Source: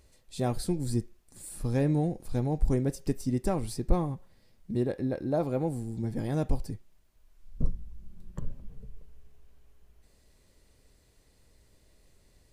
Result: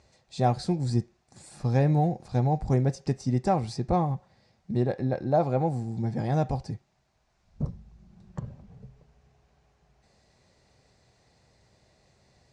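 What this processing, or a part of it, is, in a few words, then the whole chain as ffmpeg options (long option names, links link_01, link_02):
car door speaker: -af "highpass=94,equalizer=frequency=130:width_type=q:width=4:gain=4,equalizer=frequency=290:width_type=q:width=4:gain=-7,equalizer=frequency=440:width_type=q:width=4:gain=-3,equalizer=frequency=760:width_type=q:width=4:gain=8,equalizer=frequency=3100:width_type=q:width=4:gain=-5,lowpass=frequency=6600:width=0.5412,lowpass=frequency=6600:width=1.3066,volume=4dB"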